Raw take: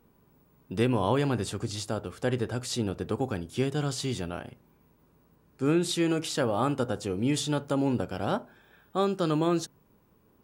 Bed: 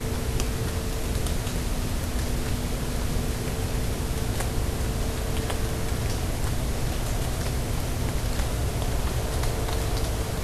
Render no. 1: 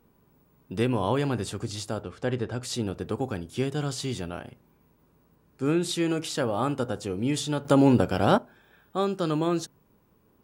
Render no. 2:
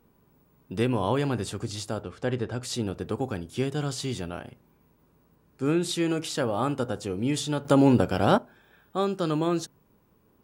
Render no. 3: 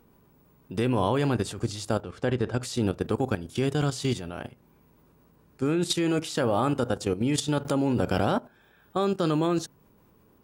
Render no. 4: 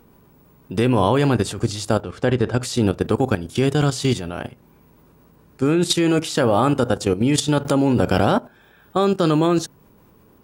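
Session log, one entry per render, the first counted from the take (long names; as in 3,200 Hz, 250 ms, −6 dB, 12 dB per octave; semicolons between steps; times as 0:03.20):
0:02.03–0:02.63: high-frequency loss of the air 68 metres; 0:07.65–0:08.38: clip gain +8 dB
no processing that can be heard
in parallel at +1 dB: brickwall limiter −18.5 dBFS, peak gain reduction 11.5 dB; on the sum: output level in coarse steps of 12 dB
level +7.5 dB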